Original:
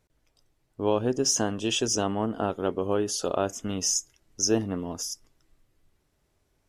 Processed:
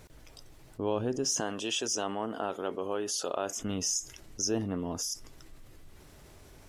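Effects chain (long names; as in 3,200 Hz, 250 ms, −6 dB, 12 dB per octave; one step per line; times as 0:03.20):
0:01.40–0:03.58: high-pass filter 560 Hz 6 dB per octave
envelope flattener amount 50%
level −8 dB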